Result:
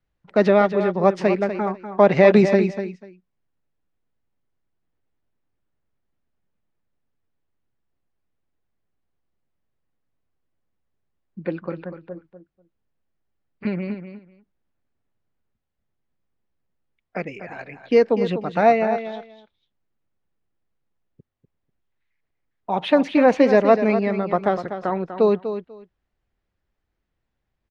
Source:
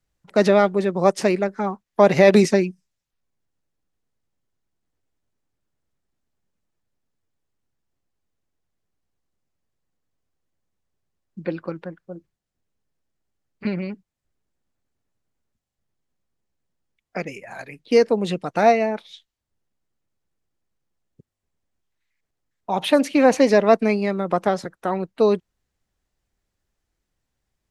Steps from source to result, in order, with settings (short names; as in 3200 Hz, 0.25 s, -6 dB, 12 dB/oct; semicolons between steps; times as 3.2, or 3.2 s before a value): LPF 3100 Hz 12 dB/oct; feedback echo 0.246 s, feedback 17%, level -10 dB